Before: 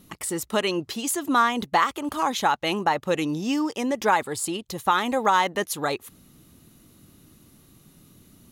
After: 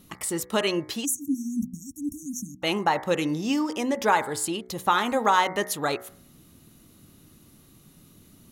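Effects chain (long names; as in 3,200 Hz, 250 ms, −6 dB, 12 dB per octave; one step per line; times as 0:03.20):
hum removal 62.13 Hz, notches 36
0:01.05–0:02.63: time-frequency box erased 310–5,500 Hz
0:01.43–0:02.10: dynamic equaliser 220 Hz, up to +5 dB, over −42 dBFS, Q 4.9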